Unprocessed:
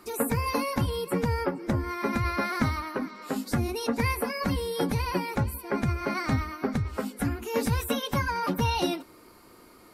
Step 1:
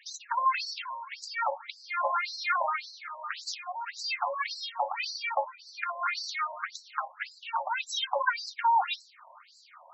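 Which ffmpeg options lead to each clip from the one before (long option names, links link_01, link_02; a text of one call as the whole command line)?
ffmpeg -i in.wav -af "afftfilt=real='re*between(b*sr/1024,740*pow(5700/740,0.5+0.5*sin(2*PI*1.8*pts/sr))/1.41,740*pow(5700/740,0.5+0.5*sin(2*PI*1.8*pts/sr))*1.41)':imag='im*between(b*sr/1024,740*pow(5700/740,0.5+0.5*sin(2*PI*1.8*pts/sr))/1.41,740*pow(5700/740,0.5+0.5*sin(2*PI*1.8*pts/sr))*1.41)':win_size=1024:overlap=0.75,volume=8dB" out.wav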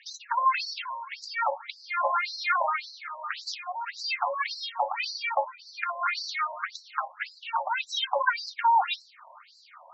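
ffmpeg -i in.wav -af "lowpass=frequency=5700:width=0.5412,lowpass=frequency=5700:width=1.3066,volume=2.5dB" out.wav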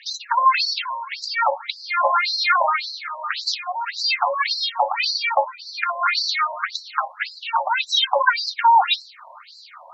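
ffmpeg -i in.wav -af "equalizer=frequency=4100:width=3.5:gain=7.5,volume=7.5dB" out.wav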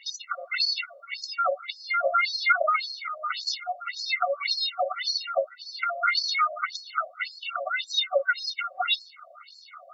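ffmpeg -i in.wav -af "afftfilt=real='re*eq(mod(floor(b*sr/1024/380),2),1)':imag='im*eq(mod(floor(b*sr/1024/380),2),1)':win_size=1024:overlap=0.75,volume=-1.5dB" out.wav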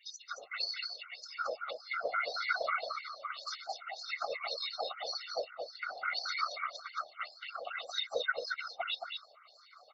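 ffmpeg -i in.wav -af "afftfilt=real='hypot(re,im)*cos(2*PI*random(0))':imag='hypot(re,im)*sin(2*PI*random(1))':win_size=512:overlap=0.75,aecho=1:1:223:0.562,volume=-5.5dB" out.wav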